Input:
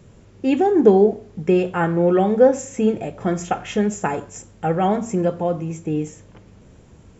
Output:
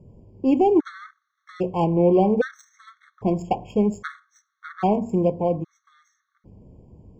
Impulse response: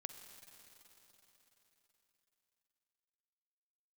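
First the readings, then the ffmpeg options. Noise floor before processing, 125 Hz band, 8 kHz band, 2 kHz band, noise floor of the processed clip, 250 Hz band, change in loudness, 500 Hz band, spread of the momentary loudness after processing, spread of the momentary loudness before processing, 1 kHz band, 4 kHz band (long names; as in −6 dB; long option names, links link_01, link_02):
−48 dBFS, −2.5 dB, can't be measured, −6.5 dB, −78 dBFS, −3.0 dB, −2.5 dB, −5.0 dB, 16 LU, 12 LU, −3.0 dB, −7.5 dB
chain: -af "aexciter=amount=7.5:drive=1.1:freq=3800,adynamicsmooth=sensitivity=0.5:basefreq=850,afftfilt=real='re*gt(sin(2*PI*0.62*pts/sr)*(1-2*mod(floor(b*sr/1024/1100),2)),0)':imag='im*gt(sin(2*PI*0.62*pts/sr)*(1-2*mod(floor(b*sr/1024/1100),2)),0)':win_size=1024:overlap=0.75"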